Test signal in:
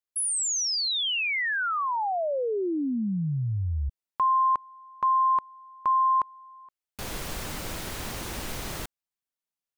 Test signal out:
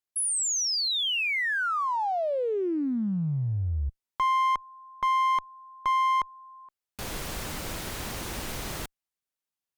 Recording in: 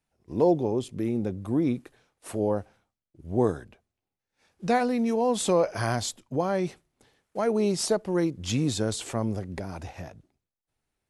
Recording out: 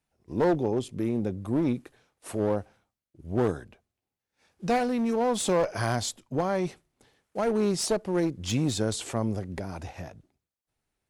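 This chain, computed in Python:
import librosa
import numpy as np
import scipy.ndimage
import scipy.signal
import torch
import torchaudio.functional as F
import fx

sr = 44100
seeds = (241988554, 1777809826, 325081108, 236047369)

y = fx.clip_asym(x, sr, top_db=-25.0, bottom_db=-15.0)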